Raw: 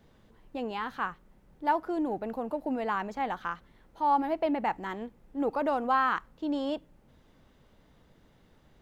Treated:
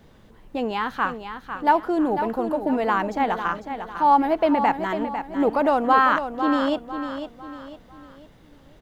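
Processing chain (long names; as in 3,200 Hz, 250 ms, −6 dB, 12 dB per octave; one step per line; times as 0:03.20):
repeating echo 500 ms, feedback 39%, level −9 dB
level +8.5 dB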